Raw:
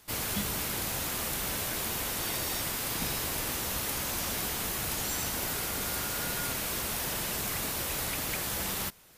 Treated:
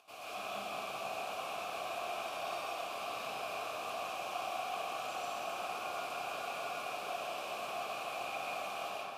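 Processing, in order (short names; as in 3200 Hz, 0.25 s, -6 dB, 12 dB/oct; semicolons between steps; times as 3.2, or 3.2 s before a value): HPF 61 Hz; high shelf 3200 Hz +8.5 dB; upward compressor, threshold -35 dBFS; vowel filter a; echo with dull and thin repeats by turns 0.162 s, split 2200 Hz, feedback 68%, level -6 dB; reverb RT60 2.6 s, pre-delay 80 ms, DRR -7.5 dB; gain -2 dB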